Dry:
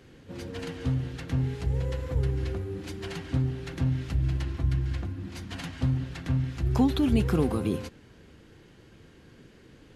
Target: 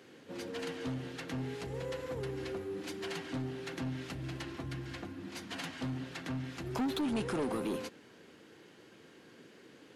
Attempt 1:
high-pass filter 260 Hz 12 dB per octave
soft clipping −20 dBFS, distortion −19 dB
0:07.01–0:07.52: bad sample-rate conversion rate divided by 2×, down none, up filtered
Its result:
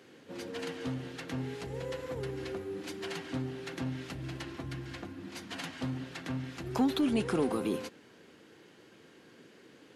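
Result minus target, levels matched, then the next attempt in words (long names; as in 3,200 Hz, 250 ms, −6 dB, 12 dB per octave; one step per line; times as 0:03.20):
soft clipping: distortion −11 dB
high-pass filter 260 Hz 12 dB per octave
soft clipping −29.5 dBFS, distortion −8 dB
0:07.01–0:07.52: bad sample-rate conversion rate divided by 2×, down none, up filtered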